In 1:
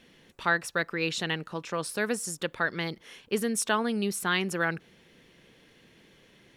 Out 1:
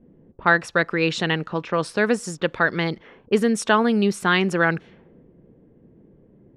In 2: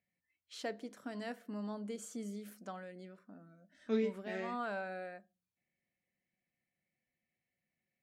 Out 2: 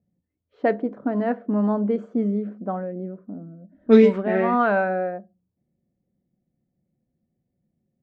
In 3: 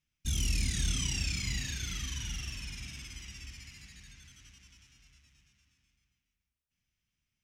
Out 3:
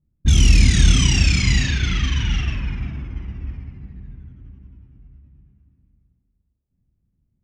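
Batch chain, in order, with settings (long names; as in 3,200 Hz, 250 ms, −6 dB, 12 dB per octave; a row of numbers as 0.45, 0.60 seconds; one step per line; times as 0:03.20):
low-pass that shuts in the quiet parts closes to 340 Hz, open at −29 dBFS
low-pass filter 7,500 Hz 12 dB per octave
high-shelf EQ 2,700 Hz −7.5 dB
normalise the peak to −3 dBFS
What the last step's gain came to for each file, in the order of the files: +10.0, +20.0, +19.0 decibels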